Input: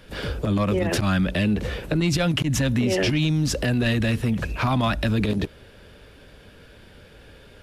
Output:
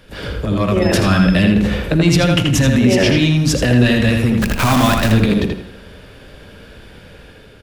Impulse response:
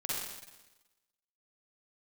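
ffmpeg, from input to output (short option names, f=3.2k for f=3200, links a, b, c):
-filter_complex "[0:a]asettb=1/sr,asplit=3[a][b][c];[a]atrim=end=0.824[d];[b]atrim=start=0.82:end=1.34,asetpts=PTS-STARTPTS,afade=t=in:d=0.004:c=qsin,afade=t=out:st=0.516:d=0.004:c=qsin,aeval=exprs='val(0)+0.0141*sin(2*PI*5200*n/s)':c=same[e];[c]atrim=start=1.336[f];[d][e]acrossfade=d=0.004:c1=hsin:c2=qsin[g];[g][f]acrossfade=d=0.004:c1=qsin:c2=hsin,asplit=3[h][i][j];[h]afade=t=out:st=4.41:d=0.02[k];[i]acrusher=bits=5:dc=4:mix=0:aa=0.000001,afade=t=in:st=4.41:d=0.02,afade=t=out:st=5.11:d=0.02[l];[j]afade=t=in:st=5.11:d=0.02[m];[k][l][m]amix=inputs=3:normalize=0,dynaudnorm=f=250:g=5:m=5dB,asplit=2[n][o];[o]adelay=82,lowpass=f=3.8k:p=1,volume=-3dB,asplit=2[p][q];[q]adelay=82,lowpass=f=3.8k:p=1,volume=0.3,asplit=2[r][s];[s]adelay=82,lowpass=f=3.8k:p=1,volume=0.3,asplit=2[t][u];[u]adelay=82,lowpass=f=3.8k:p=1,volume=0.3[v];[n][p][r][t][v]amix=inputs=5:normalize=0,asplit=2[w][x];[1:a]atrim=start_sample=2205,asetrate=48510,aresample=44100[y];[x][y]afir=irnorm=-1:irlink=0,volume=-15dB[z];[w][z]amix=inputs=2:normalize=0,volume=1dB"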